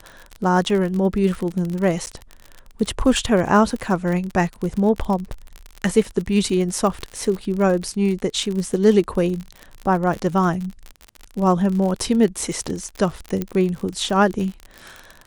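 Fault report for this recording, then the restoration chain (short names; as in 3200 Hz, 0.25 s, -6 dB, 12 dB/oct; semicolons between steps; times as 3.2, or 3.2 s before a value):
crackle 49/s -25 dBFS
2.06–2.07 gap 9.7 ms
13.42 pop -11 dBFS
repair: de-click; interpolate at 2.06, 9.7 ms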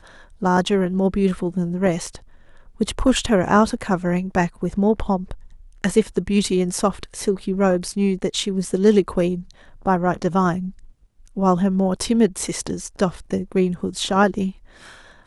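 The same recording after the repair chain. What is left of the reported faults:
none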